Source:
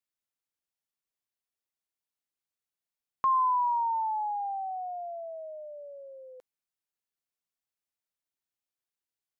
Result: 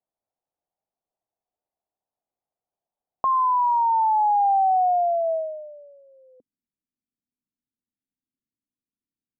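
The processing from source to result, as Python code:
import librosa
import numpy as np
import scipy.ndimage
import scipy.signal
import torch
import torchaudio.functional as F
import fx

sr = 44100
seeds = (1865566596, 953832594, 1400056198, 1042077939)

y = fx.filter_sweep_lowpass(x, sr, from_hz=730.0, to_hz=250.0, start_s=5.23, end_s=6.04, q=3.8)
y = F.gain(torch.from_numpy(y), 5.0).numpy()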